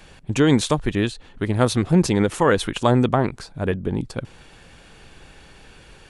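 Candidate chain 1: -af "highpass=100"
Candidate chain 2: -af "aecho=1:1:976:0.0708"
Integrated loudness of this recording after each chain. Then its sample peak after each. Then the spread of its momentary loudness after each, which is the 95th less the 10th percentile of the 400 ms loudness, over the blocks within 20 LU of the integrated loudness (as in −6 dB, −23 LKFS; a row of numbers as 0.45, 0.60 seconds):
−21.0, −21.0 LKFS; −3.0, −2.5 dBFS; 11, 10 LU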